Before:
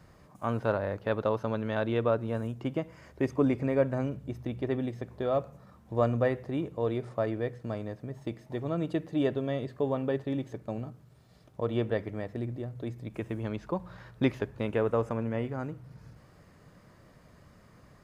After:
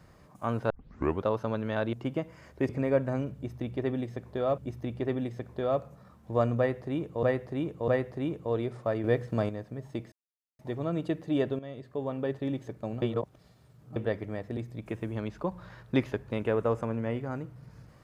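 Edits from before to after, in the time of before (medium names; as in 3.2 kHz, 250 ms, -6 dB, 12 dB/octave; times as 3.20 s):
0.70 s: tape start 0.55 s
1.93–2.53 s: delete
3.29–3.54 s: delete
4.20–5.43 s: loop, 2 plays
6.20–6.85 s: loop, 3 plays
7.36–7.81 s: gain +6.5 dB
8.44 s: insert silence 0.47 s
9.44–10.30 s: fade in, from -12.5 dB
10.87–11.81 s: reverse
12.42–12.85 s: delete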